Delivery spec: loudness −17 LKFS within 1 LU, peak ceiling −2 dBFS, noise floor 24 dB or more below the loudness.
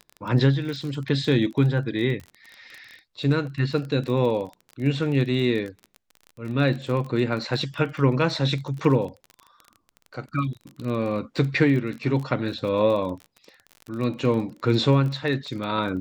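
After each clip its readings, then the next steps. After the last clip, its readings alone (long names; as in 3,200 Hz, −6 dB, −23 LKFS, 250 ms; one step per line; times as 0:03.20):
crackle rate 26 per second; integrated loudness −24.5 LKFS; sample peak −5.5 dBFS; target loudness −17.0 LKFS
→ click removal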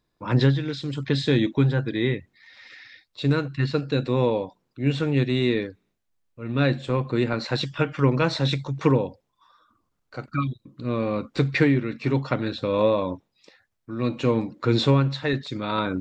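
crackle rate 0 per second; integrated loudness −24.5 LKFS; sample peak −5.5 dBFS; target loudness −17.0 LKFS
→ level +7.5 dB
brickwall limiter −2 dBFS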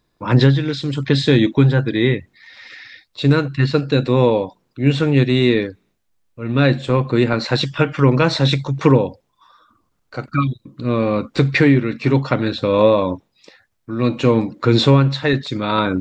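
integrated loudness −17.0 LKFS; sample peak −2.0 dBFS; background noise floor −68 dBFS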